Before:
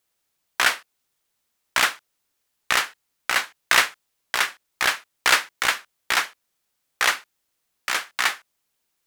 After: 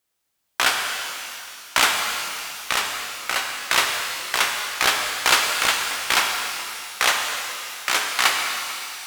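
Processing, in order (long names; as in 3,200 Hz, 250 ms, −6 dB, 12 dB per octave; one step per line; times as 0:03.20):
dynamic equaliser 1,800 Hz, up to −6 dB, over −34 dBFS, Q 2.5
automatic gain control
reverb with rising layers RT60 2.6 s, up +12 semitones, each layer −8 dB, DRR 1.5 dB
level −2 dB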